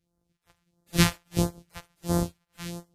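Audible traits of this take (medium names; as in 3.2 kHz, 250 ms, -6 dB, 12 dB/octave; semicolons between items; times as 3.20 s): a buzz of ramps at a fixed pitch in blocks of 256 samples; phasing stages 2, 1.5 Hz, lowest notch 240–2500 Hz; WMA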